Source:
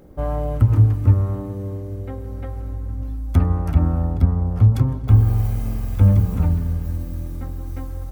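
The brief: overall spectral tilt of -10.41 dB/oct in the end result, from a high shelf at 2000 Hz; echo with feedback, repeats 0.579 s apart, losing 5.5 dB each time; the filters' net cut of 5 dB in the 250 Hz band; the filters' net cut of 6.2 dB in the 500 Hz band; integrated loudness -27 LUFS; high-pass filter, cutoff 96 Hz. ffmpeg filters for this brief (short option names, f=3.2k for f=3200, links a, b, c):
-af "highpass=96,equalizer=f=250:t=o:g=-6,equalizer=f=500:t=o:g=-5.5,highshelf=f=2k:g=-9,aecho=1:1:579|1158|1737|2316|2895|3474|4053:0.531|0.281|0.149|0.079|0.0419|0.0222|0.0118,volume=-4.5dB"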